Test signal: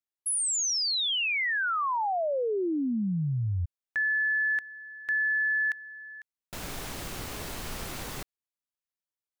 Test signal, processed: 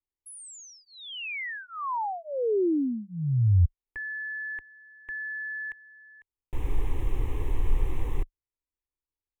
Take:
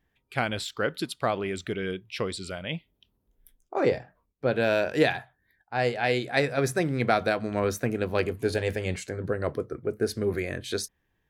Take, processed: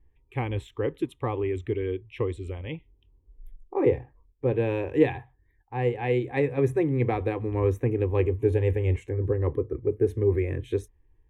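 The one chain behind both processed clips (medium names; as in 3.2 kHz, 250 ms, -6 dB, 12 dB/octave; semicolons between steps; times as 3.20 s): tilt EQ -4 dB/octave; static phaser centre 960 Hz, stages 8; trim -1 dB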